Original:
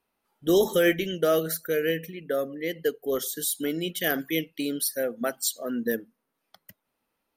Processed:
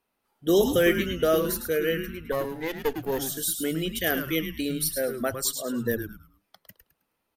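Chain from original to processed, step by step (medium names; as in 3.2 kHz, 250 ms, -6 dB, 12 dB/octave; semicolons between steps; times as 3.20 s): 2.32–3.19 s: comb filter that takes the minimum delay 0.44 ms; frequency-shifting echo 106 ms, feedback 31%, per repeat -130 Hz, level -8 dB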